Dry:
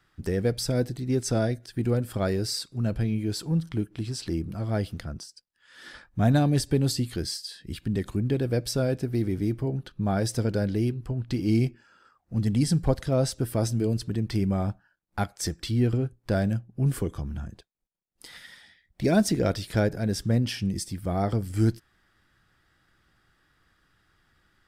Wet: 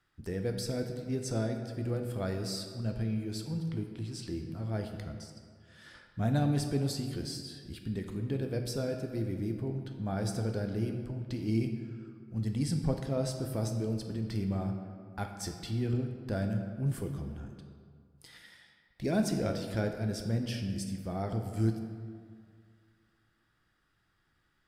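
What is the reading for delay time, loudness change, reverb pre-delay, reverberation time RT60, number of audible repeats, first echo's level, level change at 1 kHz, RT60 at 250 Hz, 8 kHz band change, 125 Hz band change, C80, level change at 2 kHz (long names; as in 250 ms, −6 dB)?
no echo audible, −7.0 dB, 10 ms, 2.0 s, no echo audible, no echo audible, −7.5 dB, 2.2 s, −8.5 dB, −7.0 dB, 7.5 dB, −7.5 dB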